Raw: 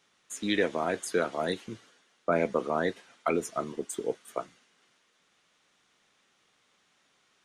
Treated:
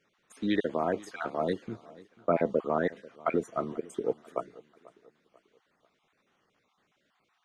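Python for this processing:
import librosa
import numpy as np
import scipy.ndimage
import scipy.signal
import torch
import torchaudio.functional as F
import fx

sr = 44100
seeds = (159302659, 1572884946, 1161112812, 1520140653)

y = fx.spec_dropout(x, sr, seeds[0], share_pct=28)
y = fx.lowpass(y, sr, hz=1300.0, slope=6)
y = fx.echo_feedback(y, sr, ms=490, feedback_pct=41, wet_db=-21.5)
y = y * librosa.db_to_amplitude(2.0)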